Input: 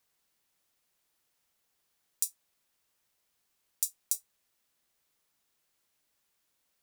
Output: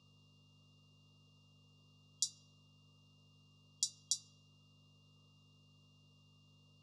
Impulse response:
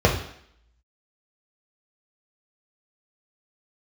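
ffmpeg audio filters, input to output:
-filter_complex "[0:a]aeval=exprs='val(0)+0.000282*(sin(2*PI*50*n/s)+sin(2*PI*2*50*n/s)/2+sin(2*PI*3*50*n/s)/3+sin(2*PI*4*50*n/s)/4+sin(2*PI*5*50*n/s)/5)':c=same,asplit=2[a][b];[1:a]atrim=start_sample=2205,asetrate=42336,aresample=44100[c];[b][c]afir=irnorm=-1:irlink=0,volume=-26.5dB[d];[a][d]amix=inputs=2:normalize=0,afftfilt=real='re*(1-between(b*sr/4096,1300,3300))':imag='im*(1-between(b*sr/4096,1300,3300))':win_size=4096:overlap=0.75,highpass=f=110:w=0.5412,highpass=f=110:w=1.3066,equalizer=f=210:t=q:w=4:g=-4,equalizer=f=750:t=q:w=4:g=-8,equalizer=f=1.2k:t=q:w=4:g=6,lowpass=f=5.6k:w=0.5412,lowpass=f=5.6k:w=1.3066,aeval=exprs='val(0)+0.000126*sin(2*PI*2800*n/s)':c=same,volume=6.5dB"

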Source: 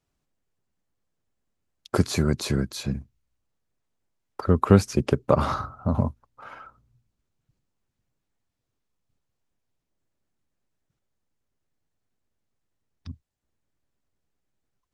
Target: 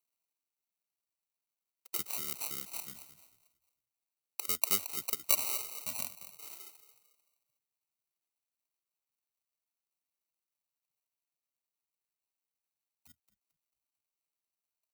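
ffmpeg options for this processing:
-filter_complex "[0:a]asplit=5[a][b][c][d][e];[b]adelay=222,afreqshift=-47,volume=-13dB[f];[c]adelay=444,afreqshift=-94,volume=-21.9dB[g];[d]adelay=666,afreqshift=-141,volume=-30.7dB[h];[e]adelay=888,afreqshift=-188,volume=-39.6dB[i];[a][f][g][h][i]amix=inputs=5:normalize=0,acrossover=split=280[j][k];[k]acrusher=samples=26:mix=1:aa=0.000001[l];[j][l]amix=inputs=2:normalize=0,aderivative,asplit=2[m][n];[n]acompressor=threshold=-44dB:ratio=6,volume=-0.5dB[o];[m][o]amix=inputs=2:normalize=0,highshelf=f=11k:g=6,bandreject=f=520:w=12,volume=-2.5dB"

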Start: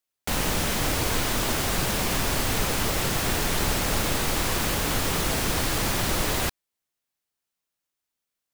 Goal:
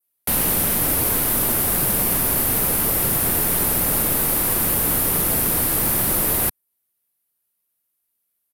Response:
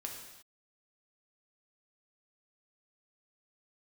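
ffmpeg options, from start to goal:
-filter_complex "[0:a]aresample=32000,aresample=44100,acrossover=split=150[a][b];[a]alimiter=level_in=3.5dB:limit=-24dB:level=0:latency=1,volume=-3.5dB[c];[c][b]amix=inputs=2:normalize=0,equalizer=f=180:t=o:w=2.9:g=3.5,aexciter=amount=7.4:drive=4.3:freq=9.4k,adynamicequalizer=threshold=0.00794:dfrequency=3600:dqfactor=0.79:tfrequency=3600:tqfactor=0.79:attack=5:release=100:ratio=0.375:range=2:mode=cutabove:tftype=bell"

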